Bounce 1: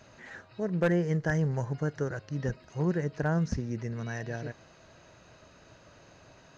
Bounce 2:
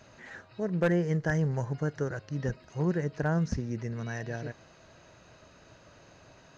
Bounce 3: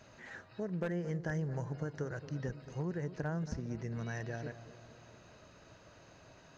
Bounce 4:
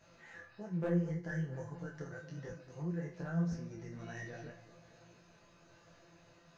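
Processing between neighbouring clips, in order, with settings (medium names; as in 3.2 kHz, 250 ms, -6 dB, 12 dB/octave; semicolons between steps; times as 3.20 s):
no audible change
compression 4:1, threshold -32 dBFS, peak gain reduction 9 dB; on a send: bucket-brigade echo 225 ms, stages 2048, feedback 64%, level -14 dB; on the sum: trim -3 dB
feedback comb 170 Hz, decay 0.41 s, harmonics all, mix 90%; detune thickener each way 41 cents; trim +11.5 dB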